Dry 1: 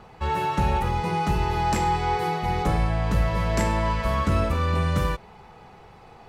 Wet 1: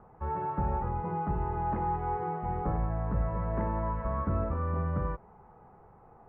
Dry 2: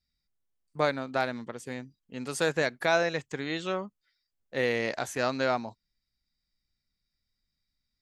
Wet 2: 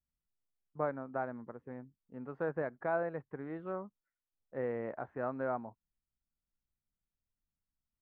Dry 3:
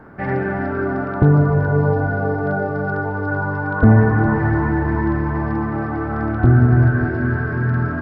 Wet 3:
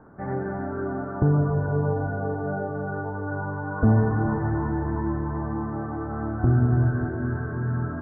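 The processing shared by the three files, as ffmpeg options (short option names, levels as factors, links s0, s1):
-af "lowpass=f=1400:w=0.5412,lowpass=f=1400:w=1.3066,volume=0.422"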